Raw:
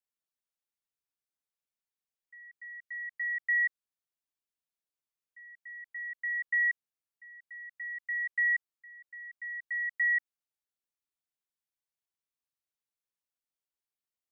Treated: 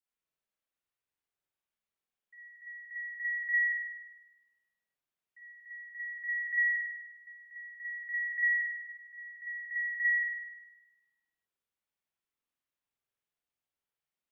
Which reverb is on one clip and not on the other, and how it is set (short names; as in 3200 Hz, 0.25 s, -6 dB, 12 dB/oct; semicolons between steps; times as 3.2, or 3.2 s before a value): spring tank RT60 1.1 s, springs 47 ms, chirp 70 ms, DRR -7 dB; gain -4 dB